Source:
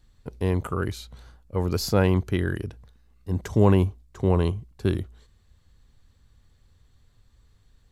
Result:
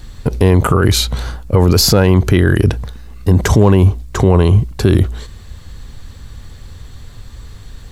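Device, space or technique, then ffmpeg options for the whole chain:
loud club master: -af "acompressor=threshold=-23dB:ratio=2,asoftclip=type=hard:threshold=-15dB,alimiter=level_in=26.5dB:limit=-1dB:release=50:level=0:latency=1,volume=-1dB"

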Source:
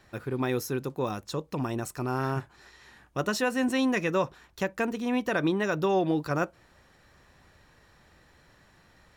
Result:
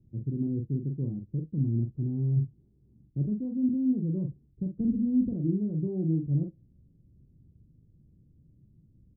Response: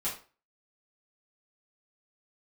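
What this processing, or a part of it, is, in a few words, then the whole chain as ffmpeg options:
the neighbour's flat through the wall: -filter_complex "[0:a]asettb=1/sr,asplit=3[link_01][link_02][link_03];[link_01]atrim=end=4.804[link_04];[link_02]atrim=start=4.8:end=5.31,asetpts=PTS-STARTPTS,afade=type=in:duration=0.004:curve=qsin,afade=type=out:start_time=0.506:duration=0.004:curve=qsin,aemphasis=mode=reproduction:type=bsi[link_05];[link_03]atrim=start=5.306[link_06];[link_04][link_05]acrossfade=duration=0.004:curve1=hsin:curve2=qsin[link_07];[link_07][link_06]acrossfade=duration=0.004:curve1=qsin:curve2=hsin,lowpass=frequency=280:width=0.5412,lowpass=frequency=280:width=1.3066,equalizer=frequency=130:width_type=o:width=0.83:gain=7,asplit=2[link_08][link_09];[link_09]adelay=43,volume=-5dB[link_10];[link_08][link_10]amix=inputs=2:normalize=0"

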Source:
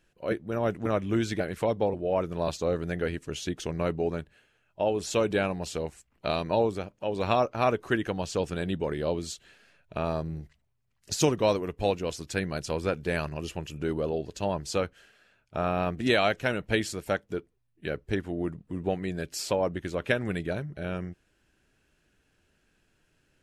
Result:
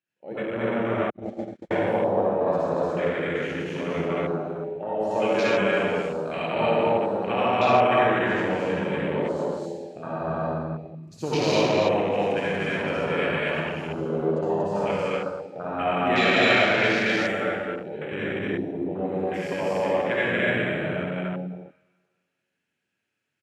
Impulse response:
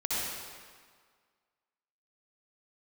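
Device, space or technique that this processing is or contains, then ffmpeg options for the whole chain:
stadium PA: -filter_complex "[0:a]highpass=frequency=120:width=0.5412,highpass=frequency=120:width=1.3066,equalizer=frequency=2300:width_type=o:width=1:gain=6,aecho=1:1:236.2|285.7:1|0.562[link_01];[1:a]atrim=start_sample=2205[link_02];[link_01][link_02]afir=irnorm=-1:irlink=0,asettb=1/sr,asplit=3[link_03][link_04][link_05];[link_03]atrim=end=1.104[link_06];[link_04]atrim=start=1.1:end=1.71,asetpts=PTS-STARTPTS,afade=type=in:duration=0.004:curve=qsin,afade=type=out:start_time=0.606:duration=0.004:curve=qsin,agate=range=-51dB:threshold=-14dB:ratio=16:detection=peak[link_07];[link_05]atrim=start=1.706[link_08];[link_06][link_07]acrossfade=duration=0.004:curve1=hsin:curve2=qsin[link_09];[link_09][link_08]acrossfade=duration=0.004:curve1=qsin:curve2=hsin,afwtdn=0.0501,volume=-6dB"

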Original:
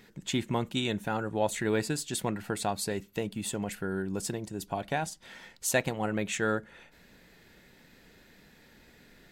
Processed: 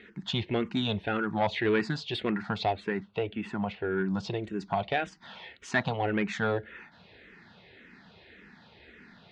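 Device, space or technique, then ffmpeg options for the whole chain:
barber-pole phaser into a guitar amplifier: -filter_complex "[0:a]asettb=1/sr,asplit=3[link_01][link_02][link_03];[link_01]atrim=end=2.724[link_04];[link_02]atrim=start=2.72:end=4,asetpts=PTS-STARTPTS,afade=type=in:duration=0.004:curve=qsin,afade=type=out:start_time=1.276:duration=0.004:curve=qsin,bass=frequency=250:gain=-3,treble=frequency=4000:gain=-12[link_05];[link_03]atrim=start=3.996[link_06];[link_04][link_05]acrossfade=duration=0.004:curve1=hsin:curve2=qsin[link_07];[link_07][link_06]acrossfade=duration=0.004:curve1=qsin:curve2=hsin,asplit=2[link_08][link_09];[link_09]afreqshift=-1.8[link_10];[link_08][link_10]amix=inputs=2:normalize=1,asoftclip=type=tanh:threshold=-25dB,highpass=81,equalizer=frequency=140:width_type=q:width=4:gain=-6,equalizer=frequency=290:width_type=q:width=4:gain=-5,equalizer=frequency=540:width_type=q:width=4:gain=-5,lowpass=frequency=3900:width=0.5412,lowpass=frequency=3900:width=1.3066,volume=8.5dB"

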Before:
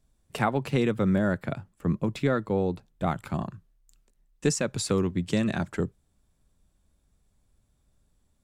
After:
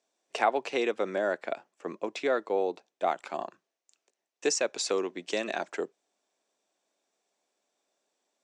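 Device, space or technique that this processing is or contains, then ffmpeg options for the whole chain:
phone speaker on a table: -af "highpass=frequency=360:width=0.5412,highpass=frequency=360:width=1.3066,equalizer=frequency=700:width_type=q:width=4:gain=5,equalizer=frequency=1300:width_type=q:width=4:gain=-3,equalizer=frequency=2500:width_type=q:width=4:gain=3,equalizer=frequency=5900:width_type=q:width=4:gain=5,lowpass=frequency=7600:width=0.5412,lowpass=frequency=7600:width=1.3066"

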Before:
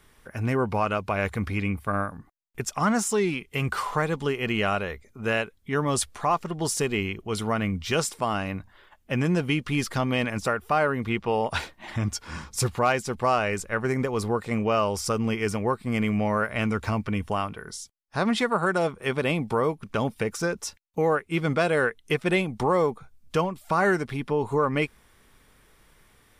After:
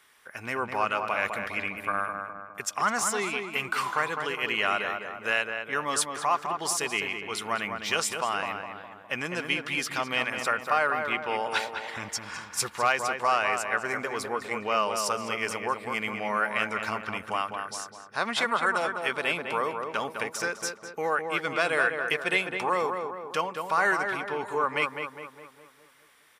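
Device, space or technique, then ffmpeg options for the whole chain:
filter by subtraction: -filter_complex "[0:a]asplit=2[link_01][link_02];[link_02]adelay=205,lowpass=frequency=2000:poles=1,volume=-5dB,asplit=2[link_03][link_04];[link_04]adelay=205,lowpass=frequency=2000:poles=1,volume=0.54,asplit=2[link_05][link_06];[link_06]adelay=205,lowpass=frequency=2000:poles=1,volume=0.54,asplit=2[link_07][link_08];[link_08]adelay=205,lowpass=frequency=2000:poles=1,volume=0.54,asplit=2[link_09][link_10];[link_10]adelay=205,lowpass=frequency=2000:poles=1,volume=0.54,asplit=2[link_11][link_12];[link_12]adelay=205,lowpass=frequency=2000:poles=1,volume=0.54,asplit=2[link_13][link_14];[link_14]adelay=205,lowpass=frequency=2000:poles=1,volume=0.54[link_15];[link_01][link_03][link_05][link_07][link_09][link_11][link_13][link_15]amix=inputs=8:normalize=0,asplit=2[link_16][link_17];[link_17]lowpass=1600,volume=-1[link_18];[link_16][link_18]amix=inputs=2:normalize=0"

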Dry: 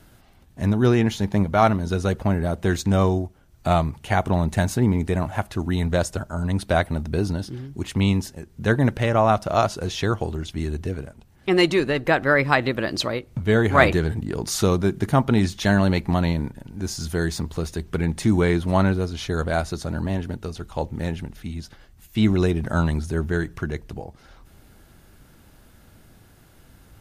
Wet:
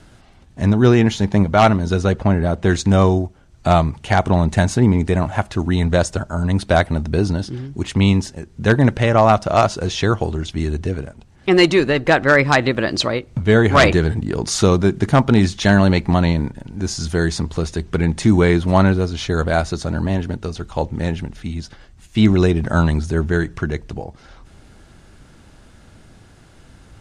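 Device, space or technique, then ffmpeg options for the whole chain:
synthesiser wavefolder: -filter_complex "[0:a]asettb=1/sr,asplit=3[link_01][link_02][link_03];[link_01]atrim=end=2.024[link_04];[link_02]atrim=start=2.02:end=2.69,asetpts=PTS-STARTPTS,afade=type=in:duration=0.004:curve=qsin,afade=type=out:start_time=0.666:duration=0.004:curve=qsin,highshelf=frequency=7700:gain=-8.5[link_05];[link_03]atrim=start=2.686[link_06];[link_04][link_05]acrossfade=duration=0.004:curve1=hsin:curve2=qsin[link_07];[link_07][link_06]acrossfade=duration=0.004:curve1=qsin:curve2=hsin,aeval=exprs='0.376*(abs(mod(val(0)/0.376+3,4)-2)-1)':channel_layout=same,lowpass=frequency=8800:width=0.5412,lowpass=frequency=8800:width=1.3066,volume=5.5dB"

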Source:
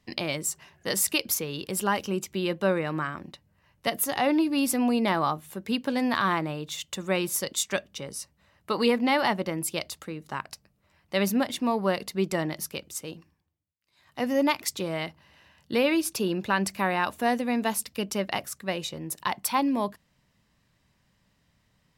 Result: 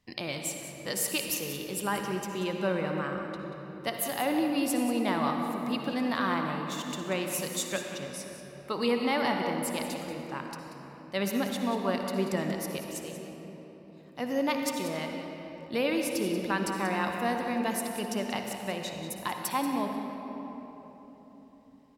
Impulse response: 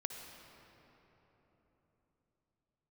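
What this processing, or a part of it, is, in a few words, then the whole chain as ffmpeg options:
cave: -filter_complex "[0:a]aecho=1:1:185:0.251[link_01];[1:a]atrim=start_sample=2205[link_02];[link_01][link_02]afir=irnorm=-1:irlink=0,volume=-3dB"

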